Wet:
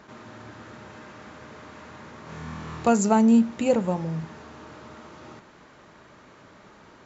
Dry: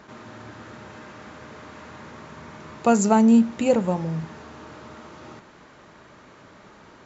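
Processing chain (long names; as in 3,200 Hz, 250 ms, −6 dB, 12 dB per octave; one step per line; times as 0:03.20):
0:02.24–0:02.89: flutter between parallel walls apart 4.3 metres, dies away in 0.9 s
level −2 dB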